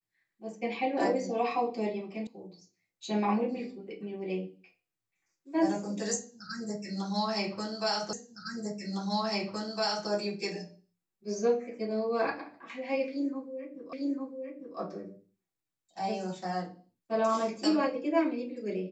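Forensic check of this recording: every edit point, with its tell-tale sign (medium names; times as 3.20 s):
2.27 s: sound stops dead
8.13 s: repeat of the last 1.96 s
13.93 s: repeat of the last 0.85 s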